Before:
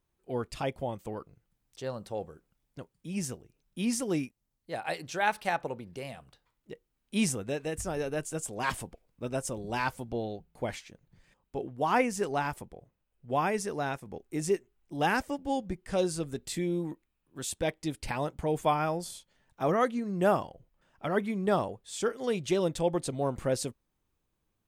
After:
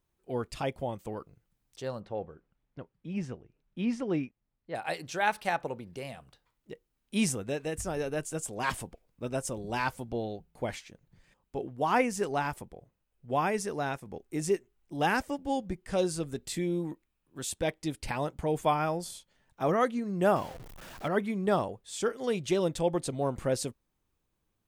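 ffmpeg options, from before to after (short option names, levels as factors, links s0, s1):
-filter_complex "[0:a]asettb=1/sr,asplit=3[s0][s1][s2];[s0]atrim=end=2.004[s3];[s1]atrim=start=2:end=4.75,asetpts=PTS-STARTPTS,afade=t=in:d=0.004:c=qsin,afade=t=out:st=2.746:d=0.004:c=qsin,lowpass=2600[s4];[s2]atrim=start=4.746[s5];[s3][s4]acrossfade=d=0.004:c1=hsin:c2=qsin[s6];[s6][s5]acrossfade=d=0.004:c1=qsin:c2=hsin,asettb=1/sr,asplit=3[s7][s8][s9];[s7]atrim=end=20.364[s10];[s8]atrim=start=20.36:end=21.08,asetpts=PTS-STARTPTS,afade=t=in:d=0.004:c=qsin,afade=t=out:st=0.716:d=0.004:c=qsin,aeval=exprs='val(0)+0.5*0.00841*sgn(val(0))':c=same[s11];[s9]atrim=start=21.076[s12];[s10][s11]acrossfade=d=0.004:c1=hsin:c2=qsin[s13];[s13][s12]acrossfade=d=0.004:c1=qsin:c2=hsin"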